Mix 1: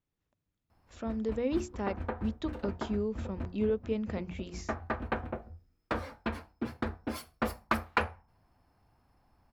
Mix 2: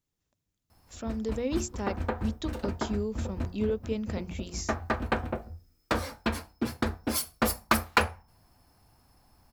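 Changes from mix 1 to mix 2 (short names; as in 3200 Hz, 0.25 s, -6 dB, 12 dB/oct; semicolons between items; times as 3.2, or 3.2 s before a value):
background +4.5 dB; master: add tone controls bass +1 dB, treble +14 dB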